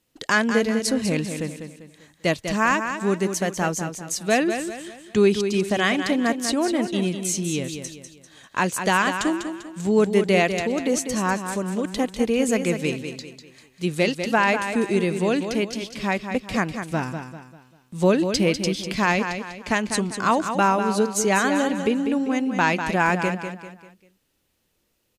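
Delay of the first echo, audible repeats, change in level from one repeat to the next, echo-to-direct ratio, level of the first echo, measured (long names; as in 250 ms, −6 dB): 197 ms, 4, −8.0 dB, −7.5 dB, −8.0 dB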